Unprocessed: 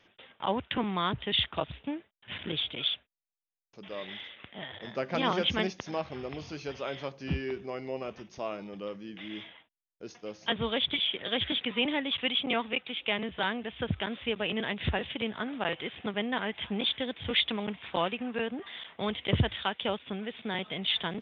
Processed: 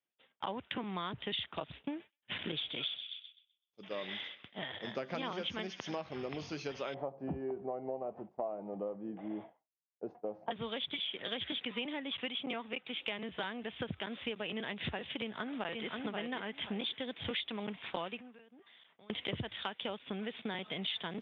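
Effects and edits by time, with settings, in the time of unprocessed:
1.87–5.95 thin delay 0.127 s, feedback 62%, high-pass 2300 Hz, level -11 dB
6.94–10.51 synth low-pass 750 Hz, resonance Q 3.4
11.93–13.01 air absorption 140 m
15.18–15.88 echo throw 0.53 s, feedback 20%, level -4.5 dB
18.19–19.1 compressor 12:1, threshold -46 dBFS
whole clip: expander -41 dBFS; HPF 120 Hz 12 dB/oct; compressor, threshold -37 dBFS; gain +1.5 dB

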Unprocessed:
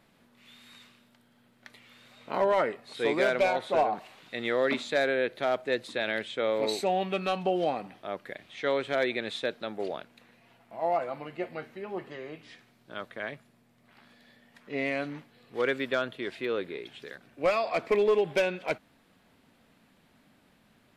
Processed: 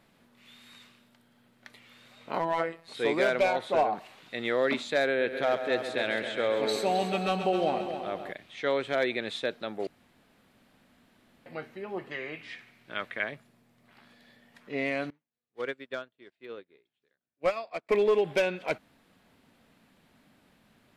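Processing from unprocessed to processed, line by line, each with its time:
2.39–2.88 robotiser 165 Hz
5.06–8.32 multi-head echo 0.133 s, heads first and second, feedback 55%, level -11 dB
9.87–11.46 room tone
12.11–13.24 bell 2200 Hz +11.5 dB 1.1 oct
15.1–17.89 upward expander 2.5:1, over -46 dBFS

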